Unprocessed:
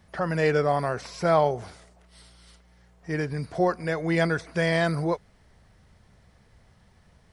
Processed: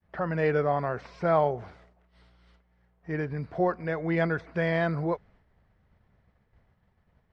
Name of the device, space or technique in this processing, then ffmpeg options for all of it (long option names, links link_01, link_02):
hearing-loss simulation: -af "lowpass=2400,agate=range=-33dB:threshold=-51dB:ratio=3:detection=peak,volume=-2.5dB"